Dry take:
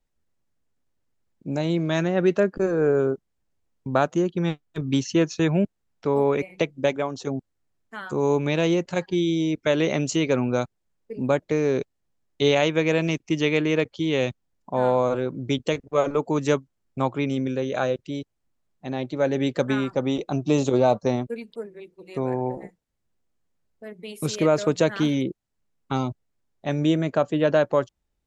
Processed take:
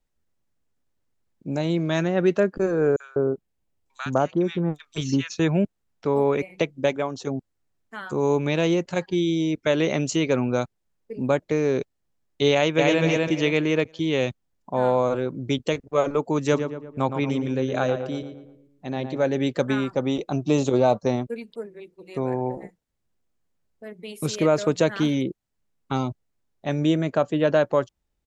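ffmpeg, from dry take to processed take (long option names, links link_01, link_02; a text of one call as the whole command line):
ffmpeg -i in.wav -filter_complex "[0:a]asettb=1/sr,asplit=3[link_01][link_02][link_03];[link_01]atrim=end=2.964[link_04];[link_02]atrim=start=2.96:end=5.3,asetpts=PTS-STARTPTS,afade=type=in:duration=0.004:curve=qsin,afade=type=out:start_time=2.336:duration=0.004:curve=qsin,acrossover=split=1400|5800[link_05][link_06][link_07];[link_06]adelay=40[link_08];[link_05]adelay=200[link_09];[link_09][link_08][link_07]amix=inputs=3:normalize=0,atrim=end_sample=103194[link_10];[link_03]atrim=start=5.296[link_11];[link_04][link_10]acrossfade=duration=0.004:curve1=hsin:curve2=qsin[link_12];[link_12][link_11]acrossfade=duration=0.004:curve1=qsin:curve2=hsin,asplit=2[link_13][link_14];[link_14]afade=type=in:start_time=12.53:duration=0.01,afade=type=out:start_time=13.02:duration=0.01,aecho=0:1:250|500|750|1000:0.841395|0.252419|0.0757256|0.0227177[link_15];[link_13][link_15]amix=inputs=2:normalize=0,asplit=3[link_16][link_17][link_18];[link_16]afade=type=out:start_time=16.51:duration=0.02[link_19];[link_17]asplit=2[link_20][link_21];[link_21]adelay=115,lowpass=frequency=2100:poles=1,volume=-7.5dB,asplit=2[link_22][link_23];[link_23]adelay=115,lowpass=frequency=2100:poles=1,volume=0.49,asplit=2[link_24][link_25];[link_25]adelay=115,lowpass=frequency=2100:poles=1,volume=0.49,asplit=2[link_26][link_27];[link_27]adelay=115,lowpass=frequency=2100:poles=1,volume=0.49,asplit=2[link_28][link_29];[link_29]adelay=115,lowpass=frequency=2100:poles=1,volume=0.49,asplit=2[link_30][link_31];[link_31]adelay=115,lowpass=frequency=2100:poles=1,volume=0.49[link_32];[link_20][link_22][link_24][link_26][link_28][link_30][link_32]amix=inputs=7:normalize=0,afade=type=in:start_time=16.51:duration=0.02,afade=type=out:start_time=19.23:duration=0.02[link_33];[link_18]afade=type=in:start_time=19.23:duration=0.02[link_34];[link_19][link_33][link_34]amix=inputs=3:normalize=0" out.wav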